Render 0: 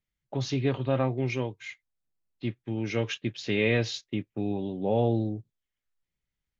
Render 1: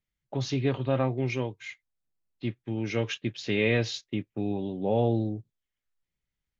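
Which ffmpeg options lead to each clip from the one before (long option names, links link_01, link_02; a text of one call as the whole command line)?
ffmpeg -i in.wav -af anull out.wav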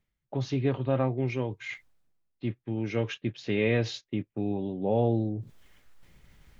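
ffmpeg -i in.wav -af "highshelf=frequency=2900:gain=-9.5,areverse,acompressor=mode=upward:threshold=-30dB:ratio=2.5,areverse" out.wav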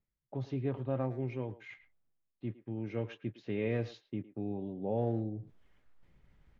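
ffmpeg -i in.wav -filter_complex "[0:a]lowpass=frequency=1400:poles=1,asplit=2[link_01][link_02];[link_02]adelay=110,highpass=300,lowpass=3400,asoftclip=type=hard:threshold=-23.5dB,volume=-15dB[link_03];[link_01][link_03]amix=inputs=2:normalize=0,volume=-7dB" out.wav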